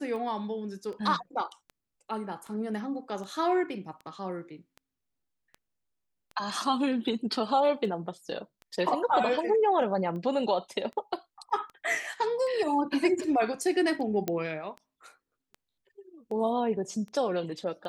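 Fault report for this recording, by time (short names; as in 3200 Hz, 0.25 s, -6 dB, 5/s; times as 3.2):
tick 78 rpm -31 dBFS
14.28 pop -15 dBFS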